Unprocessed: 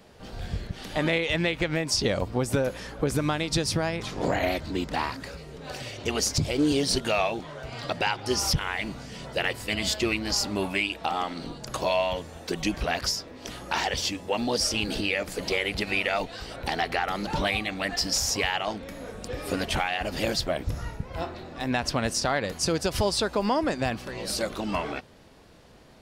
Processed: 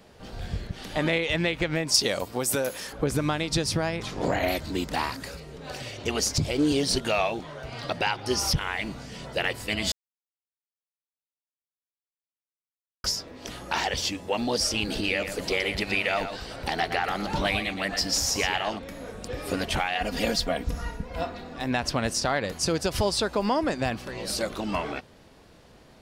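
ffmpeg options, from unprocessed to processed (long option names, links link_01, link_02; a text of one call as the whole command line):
ffmpeg -i in.wav -filter_complex "[0:a]asettb=1/sr,asplit=3[link_01][link_02][link_03];[link_01]atrim=end=1.944[link_04];[link_02]atrim=start=1.94:end=2.93,asetpts=PTS-STARTPTS,afade=type=in:duration=0.004:curve=qsin,afade=type=out:start_time=0.986:duration=0.004:curve=qsin,aemphasis=mode=production:type=bsi[link_05];[link_03]atrim=start=2.926[link_06];[link_04][link_05]acrossfade=duration=0.004:curve1=hsin:curve2=qsin[link_07];[link_07][link_06]acrossfade=duration=0.004:curve1=qsin:curve2=hsin,asettb=1/sr,asplit=3[link_08][link_09][link_10];[link_08]atrim=end=4.484[link_11];[link_09]atrim=start=4.48:end=5.4,asetpts=PTS-STARTPTS,afade=type=in:duration=0.004:curve=qsin,afade=type=out:start_time=0.916:duration=0.004:curve=qsin,highshelf=frequency=7200:gain=11[link_12];[link_10]atrim=start=5.396[link_13];[link_11][link_12]acrossfade=duration=0.004:curve1=hsin:curve2=qsin[link_14];[link_14][link_13]acrossfade=duration=0.004:curve1=qsin:curve2=hsin,asettb=1/sr,asplit=3[link_15][link_16][link_17];[link_15]atrim=end=7.494[link_18];[link_16]atrim=start=7.49:end=8.54,asetpts=PTS-STARTPTS,afade=type=in:duration=0.004:curve=qsin,afade=type=out:start_time=1.046:duration=0.004:curve=qsin,bandreject=frequency=7400:width=12[link_19];[link_17]atrim=start=8.536[link_20];[link_18][link_19]acrossfade=duration=0.004:curve1=hsin:curve2=qsin[link_21];[link_21][link_20]acrossfade=duration=0.004:curve1=qsin:curve2=hsin,asettb=1/sr,asplit=3[link_22][link_23][link_24];[link_22]atrim=end=14.914[link_25];[link_23]atrim=start=14.91:end=18.79,asetpts=PTS-STARTPTS,afade=type=in:duration=0.004:curve=qsin,afade=type=out:start_time=3.876:duration=0.004:curve=qsin,aecho=1:1:120:0.355,atrim=end_sample=171108[link_26];[link_24]atrim=start=18.786[link_27];[link_25][link_26]acrossfade=duration=0.004:curve1=hsin:curve2=qsin[link_28];[link_28][link_27]acrossfade=duration=0.004:curve1=qsin:curve2=hsin,asettb=1/sr,asplit=3[link_29][link_30][link_31];[link_29]atrim=end=19.954[link_32];[link_30]atrim=start=19.95:end=21.56,asetpts=PTS-STARTPTS,afade=type=in:duration=0.004:curve=qsin,afade=type=out:start_time=1.606:duration=0.004:curve=qsin,aecho=1:1:4.2:0.65,atrim=end_sample=71001[link_33];[link_31]atrim=start=21.556[link_34];[link_32][link_33]acrossfade=duration=0.004:curve1=hsin:curve2=qsin[link_35];[link_35][link_34]acrossfade=duration=0.004:curve1=qsin:curve2=hsin,asplit=3[link_36][link_37][link_38];[link_36]atrim=end=9.92,asetpts=PTS-STARTPTS,afade=type=out:start_time=9.916:duration=0.004:curve=hsin[link_39];[link_37]atrim=start=9.92:end=13.04,asetpts=PTS-STARTPTS,volume=0[link_40];[link_38]atrim=start=13.04,asetpts=PTS-STARTPTS,afade=type=in:duration=0.004:curve=hsin[link_41];[link_39][link_40][link_41]concat=n=3:v=0:a=1" out.wav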